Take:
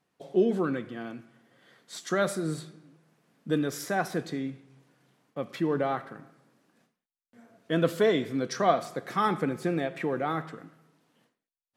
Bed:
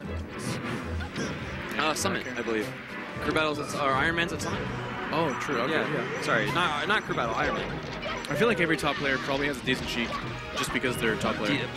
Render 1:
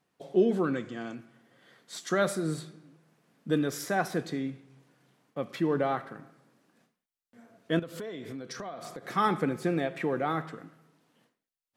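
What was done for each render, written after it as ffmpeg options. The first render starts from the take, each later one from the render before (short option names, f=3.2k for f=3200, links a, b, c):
-filter_complex "[0:a]asettb=1/sr,asplit=3[a][b][c];[a]atrim=end=0.754[d];[b]atrim=start=0.75:end=1.15,asetpts=PTS-STARTPTS,afade=t=in:d=0.004:c=qsin,afade=t=out:st=0.396:d=0.004:c=qsin,lowpass=f=7.1k:t=q:w=4.5[e];[c]atrim=start=1.146[f];[d][e]acrossfade=d=0.004:c1=hsin:c2=qsin[g];[g][f]acrossfade=d=0.004:c1=qsin:c2=hsin,asettb=1/sr,asplit=3[h][i][j];[h]atrim=end=7.794[k];[i]atrim=start=7.79:end=9.05,asetpts=PTS-STARTPTS,afade=t=in:d=0.004:c=qsin,afade=t=out:st=1.256:d=0.004:c=qsin,acompressor=threshold=-36dB:ratio=8:attack=3.2:release=140:knee=1:detection=peak[l];[j]atrim=start=9.046[m];[k][l]acrossfade=d=0.004:c1=hsin:c2=qsin[n];[n][m]acrossfade=d=0.004:c1=qsin:c2=hsin"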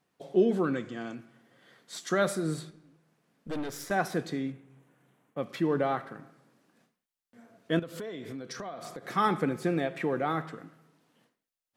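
-filter_complex "[0:a]asettb=1/sr,asplit=3[a][b][c];[a]atrim=end=2.704[d];[b]atrim=start=2.7:end=3.91,asetpts=PTS-STARTPTS,afade=t=in:d=0.004:c=qsin,afade=t=out:st=1.206:d=0.004:c=qsin,aeval=exprs='(tanh(35.5*val(0)+0.7)-tanh(0.7))/35.5':c=same[e];[c]atrim=start=3.906[f];[d][e]acrossfade=d=0.004:c1=hsin:c2=qsin[g];[g][f]acrossfade=d=0.004:c1=qsin:c2=hsin,asettb=1/sr,asplit=3[h][i][j];[h]atrim=end=4.524[k];[i]atrim=start=4.52:end=5.38,asetpts=PTS-STARTPTS,afade=t=in:d=0.004:c=qsin,afade=t=out:st=0.856:d=0.004:c=qsin,equalizer=f=4.8k:t=o:w=0.8:g=-13[l];[j]atrim=start=5.376[m];[k][l]acrossfade=d=0.004:c1=hsin:c2=qsin[n];[n][m]acrossfade=d=0.004:c1=qsin:c2=hsin"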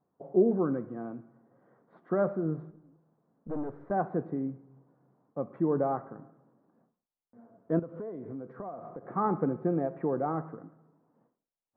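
-af "lowpass=f=1.1k:w=0.5412,lowpass=f=1.1k:w=1.3066"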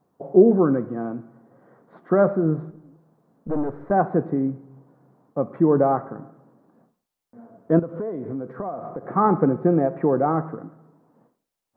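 -af "volume=10dB"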